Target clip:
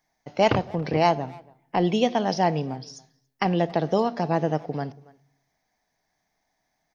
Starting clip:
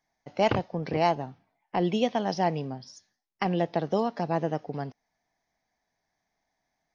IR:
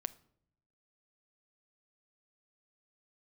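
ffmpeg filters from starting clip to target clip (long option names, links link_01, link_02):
-filter_complex "[0:a]crystalizer=i=0.5:c=0,asplit=2[link_01][link_02];[link_02]adelay=280,highpass=300,lowpass=3400,asoftclip=type=hard:threshold=-20dB,volume=-22dB[link_03];[link_01][link_03]amix=inputs=2:normalize=0,asplit=2[link_04][link_05];[1:a]atrim=start_sample=2205[link_06];[link_05][link_06]afir=irnorm=-1:irlink=0,volume=8.5dB[link_07];[link_04][link_07]amix=inputs=2:normalize=0,volume=-6.5dB"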